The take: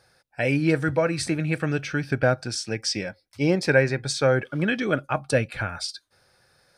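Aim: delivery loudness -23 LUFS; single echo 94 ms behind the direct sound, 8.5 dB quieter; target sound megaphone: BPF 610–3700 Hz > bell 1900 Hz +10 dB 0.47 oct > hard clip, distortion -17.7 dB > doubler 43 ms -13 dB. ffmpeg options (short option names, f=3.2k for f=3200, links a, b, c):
-filter_complex "[0:a]highpass=610,lowpass=3.7k,equalizer=f=1.9k:t=o:w=0.47:g=10,aecho=1:1:94:0.376,asoftclip=type=hard:threshold=-13dB,asplit=2[a][b];[b]adelay=43,volume=-13dB[c];[a][c]amix=inputs=2:normalize=0,volume=2dB"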